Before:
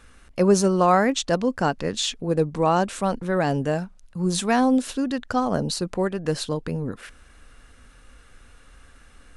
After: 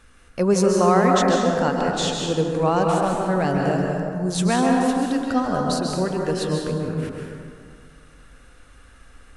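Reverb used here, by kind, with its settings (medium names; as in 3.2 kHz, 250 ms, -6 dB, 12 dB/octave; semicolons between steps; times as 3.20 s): plate-style reverb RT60 2.2 s, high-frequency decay 0.45×, pre-delay 120 ms, DRR -0.5 dB; trim -1.5 dB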